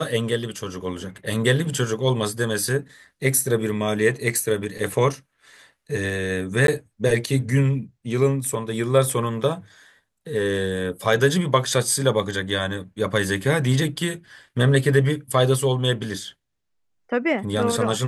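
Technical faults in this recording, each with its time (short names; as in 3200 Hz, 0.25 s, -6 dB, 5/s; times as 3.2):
6.67–6.68 gap 12 ms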